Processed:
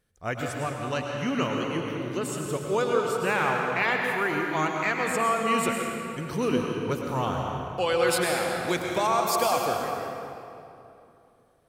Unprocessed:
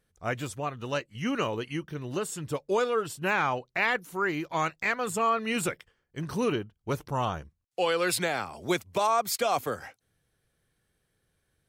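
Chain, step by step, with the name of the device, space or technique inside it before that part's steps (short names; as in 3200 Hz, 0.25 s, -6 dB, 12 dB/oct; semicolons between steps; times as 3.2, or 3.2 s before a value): stairwell (reverb RT60 2.9 s, pre-delay 95 ms, DRR 0.5 dB)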